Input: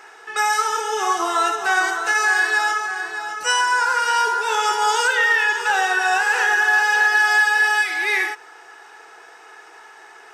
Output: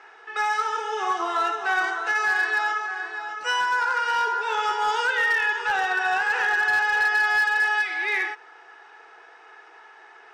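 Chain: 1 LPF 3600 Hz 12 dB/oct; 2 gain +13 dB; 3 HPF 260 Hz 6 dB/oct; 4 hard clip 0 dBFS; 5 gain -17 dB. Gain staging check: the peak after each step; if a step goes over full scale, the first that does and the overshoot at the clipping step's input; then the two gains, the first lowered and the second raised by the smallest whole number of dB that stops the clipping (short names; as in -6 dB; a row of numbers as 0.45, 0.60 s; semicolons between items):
-9.5, +3.5, +4.0, 0.0, -17.0 dBFS; step 2, 4.0 dB; step 2 +9 dB, step 5 -13 dB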